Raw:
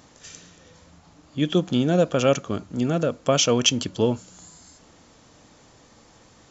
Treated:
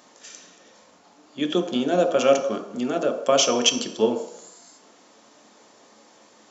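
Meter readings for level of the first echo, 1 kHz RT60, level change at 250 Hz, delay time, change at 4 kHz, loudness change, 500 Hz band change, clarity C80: no echo audible, 0.80 s, −2.5 dB, no echo audible, +0.5 dB, 0.0 dB, +2.0 dB, 11.5 dB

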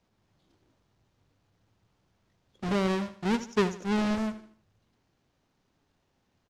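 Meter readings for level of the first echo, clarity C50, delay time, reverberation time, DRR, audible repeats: −14.0 dB, no reverb audible, 78 ms, no reverb audible, no reverb audible, 3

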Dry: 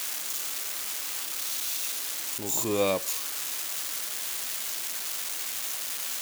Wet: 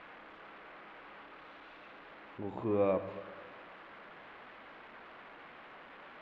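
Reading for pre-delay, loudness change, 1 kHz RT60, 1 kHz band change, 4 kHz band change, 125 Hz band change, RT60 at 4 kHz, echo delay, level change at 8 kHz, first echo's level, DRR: 37 ms, −8.5 dB, 1.6 s, −5.0 dB, −26.0 dB, −2.0 dB, 1.4 s, no echo audible, below −40 dB, no echo audible, 11.0 dB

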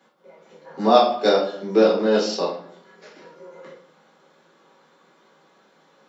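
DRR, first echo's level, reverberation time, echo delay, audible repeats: −5.0 dB, no echo audible, 0.65 s, no echo audible, no echo audible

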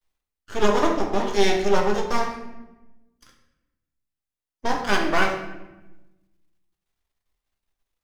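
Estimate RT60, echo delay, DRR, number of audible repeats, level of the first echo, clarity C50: 1.0 s, no echo audible, 1.5 dB, no echo audible, no echo audible, 6.0 dB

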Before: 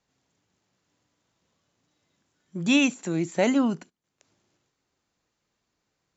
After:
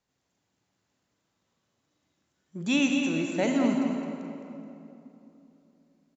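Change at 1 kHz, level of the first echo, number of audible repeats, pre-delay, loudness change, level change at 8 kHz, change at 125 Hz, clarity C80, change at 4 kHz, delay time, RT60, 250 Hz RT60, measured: −2.0 dB, −8.0 dB, 2, 39 ms, −3.0 dB, can't be measured, −3.5 dB, 2.0 dB, −3.0 dB, 214 ms, 3.0 s, 3.5 s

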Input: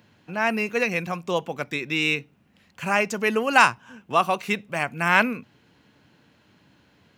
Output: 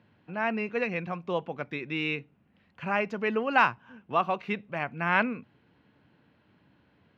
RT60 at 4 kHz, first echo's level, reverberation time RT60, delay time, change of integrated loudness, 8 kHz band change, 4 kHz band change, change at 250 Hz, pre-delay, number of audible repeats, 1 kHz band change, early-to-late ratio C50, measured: no reverb audible, no echo audible, no reverb audible, no echo audible, −6.0 dB, below −25 dB, −10.0 dB, −4.5 dB, no reverb audible, no echo audible, −5.5 dB, no reverb audible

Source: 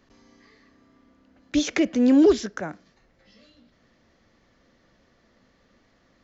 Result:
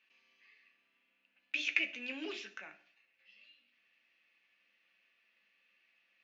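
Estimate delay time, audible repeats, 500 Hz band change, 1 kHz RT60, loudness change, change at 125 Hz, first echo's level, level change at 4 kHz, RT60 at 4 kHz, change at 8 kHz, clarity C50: no echo audible, no echo audible, −27.0 dB, 0.50 s, −15.0 dB, below −30 dB, no echo audible, −6.5 dB, 0.50 s, can't be measured, 13.5 dB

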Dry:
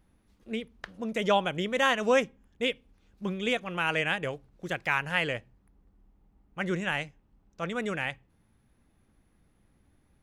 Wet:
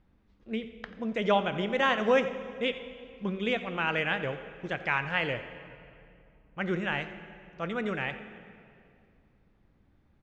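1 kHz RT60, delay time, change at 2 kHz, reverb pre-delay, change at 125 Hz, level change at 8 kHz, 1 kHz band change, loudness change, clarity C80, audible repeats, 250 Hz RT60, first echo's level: 2.3 s, 88 ms, −1.0 dB, 7 ms, 0.0 dB, below −10 dB, −0.5 dB, −0.5 dB, 11.0 dB, 1, 2.8 s, −16.5 dB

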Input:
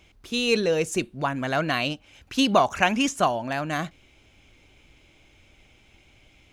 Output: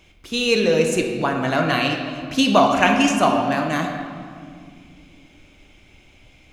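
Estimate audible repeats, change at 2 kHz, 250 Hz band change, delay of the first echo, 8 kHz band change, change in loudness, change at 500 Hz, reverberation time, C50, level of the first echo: no echo audible, +5.0 dB, +6.5 dB, no echo audible, +4.0 dB, +5.0 dB, +5.5 dB, 2.1 s, 4.0 dB, no echo audible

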